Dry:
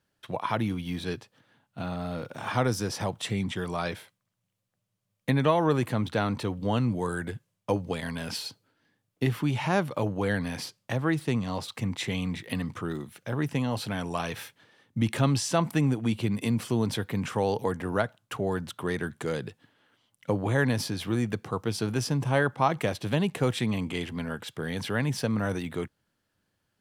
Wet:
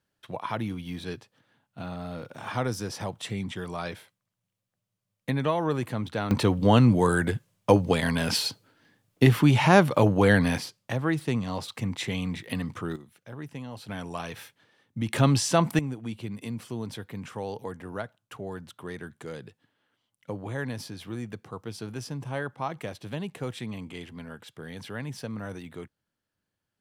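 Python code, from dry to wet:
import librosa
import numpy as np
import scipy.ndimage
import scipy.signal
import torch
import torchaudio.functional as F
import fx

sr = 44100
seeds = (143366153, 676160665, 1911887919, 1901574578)

y = fx.gain(x, sr, db=fx.steps((0.0, -3.0), (6.31, 8.0), (10.58, 0.0), (12.96, -10.5), (13.89, -4.0), (15.13, 3.0), (15.79, -8.0)))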